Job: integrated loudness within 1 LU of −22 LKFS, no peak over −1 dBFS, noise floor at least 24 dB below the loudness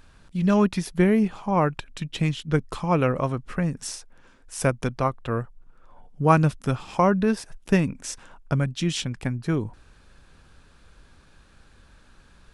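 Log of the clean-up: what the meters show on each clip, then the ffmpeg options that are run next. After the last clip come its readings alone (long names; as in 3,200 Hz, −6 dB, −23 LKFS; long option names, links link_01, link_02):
integrated loudness −24.5 LKFS; sample peak −4.0 dBFS; target loudness −22.0 LKFS
→ -af "volume=2.5dB"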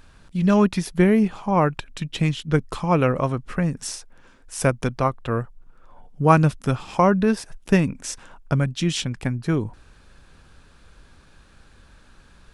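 integrated loudness −22.0 LKFS; sample peak −1.5 dBFS; background noise floor −53 dBFS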